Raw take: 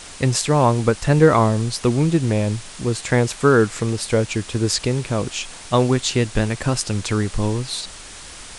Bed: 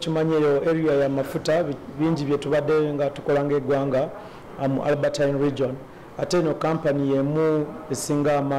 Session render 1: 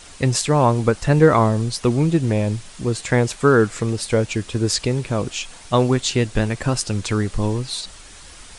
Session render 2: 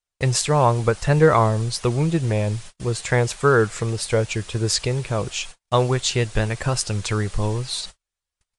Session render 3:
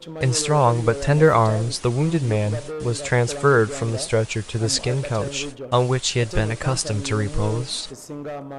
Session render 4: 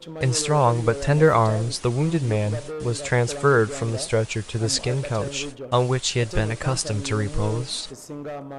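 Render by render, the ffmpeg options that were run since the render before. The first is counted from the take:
-af "afftdn=nr=6:nf=-38"
-af "agate=range=0.00501:threshold=0.02:ratio=16:detection=peak,equalizer=f=260:w=2.2:g=-10.5"
-filter_complex "[1:a]volume=0.282[s0];[0:a][s0]amix=inputs=2:normalize=0"
-af "volume=0.841"

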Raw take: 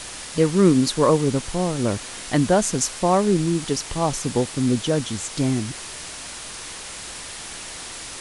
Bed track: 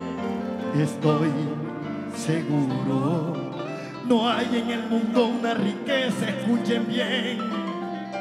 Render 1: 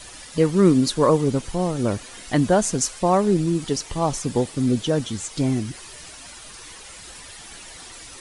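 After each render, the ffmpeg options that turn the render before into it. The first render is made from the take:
-af "afftdn=nr=10:nf=-36"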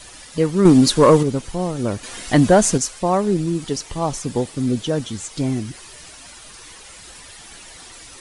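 -filter_complex "[0:a]asettb=1/sr,asplit=3[s0][s1][s2];[s0]atrim=end=0.654[s3];[s1]atrim=start=0.65:end=1.23,asetpts=PTS-STARTPTS,afade=t=in:d=0.004:c=qsin,afade=t=out:st=0.576:d=0.004:c=qsin,acontrast=84[s4];[s2]atrim=start=1.226[s5];[s3][s4]acrossfade=d=0.004:c1=hsin:c2=qsin[s6];[s6][s5]acrossfade=d=0.004:c1=qsin:c2=hsin,asettb=1/sr,asplit=3[s7][s8][s9];[s7]atrim=end=2.034[s10];[s8]atrim=start=2.03:end=2.78,asetpts=PTS-STARTPTS,afade=t=in:d=0.004:c=qsin,afade=t=out:st=0.746:d=0.004:c=qsin,acontrast=62[s11];[s9]atrim=start=2.776[s12];[s10][s11]acrossfade=d=0.004:c1=hsin:c2=qsin[s13];[s13][s12]acrossfade=d=0.004:c1=qsin:c2=hsin"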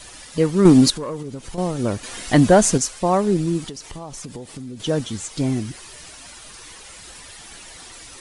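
-filter_complex "[0:a]asettb=1/sr,asplit=3[s0][s1][s2];[s0]atrim=end=0.904[s3];[s1]atrim=start=0.9:end=1.58,asetpts=PTS-STARTPTS,afade=t=in:d=0.004:c=qsin,afade=t=out:st=0.676:d=0.004:c=qsin,acompressor=threshold=0.0355:ratio=4:attack=3.2:release=140:knee=1:detection=peak[s4];[s2]atrim=start=1.576[s5];[s3][s4]acrossfade=d=0.004:c1=hsin:c2=qsin[s6];[s6][s5]acrossfade=d=0.004:c1=qsin:c2=hsin,asettb=1/sr,asplit=3[s7][s8][s9];[s7]atrim=end=3.694[s10];[s8]atrim=start=3.69:end=4.8,asetpts=PTS-STARTPTS,afade=t=in:d=0.004:c=qsin,afade=t=out:st=1.106:d=0.004:c=qsin,acompressor=threshold=0.0316:ratio=10:attack=3.2:release=140:knee=1:detection=peak[s11];[s9]atrim=start=4.796[s12];[s10][s11]acrossfade=d=0.004:c1=hsin:c2=qsin[s13];[s13][s12]acrossfade=d=0.004:c1=qsin:c2=hsin"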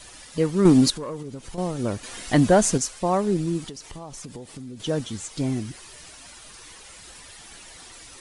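-af "volume=0.631"

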